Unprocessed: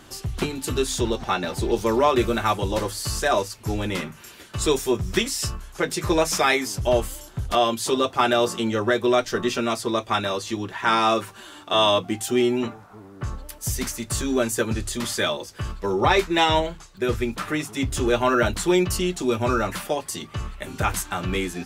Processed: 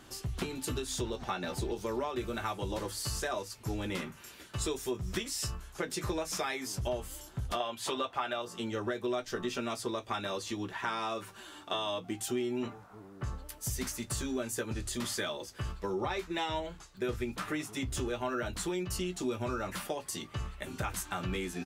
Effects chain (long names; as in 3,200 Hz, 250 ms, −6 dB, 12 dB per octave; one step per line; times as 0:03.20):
0:07.60–0:08.42: flat-topped bell 1,400 Hz +8.5 dB 3 octaves
downward compressor 10 to 1, threshold −24 dBFS, peak gain reduction 17 dB
double-tracking delay 16 ms −11 dB
level −7 dB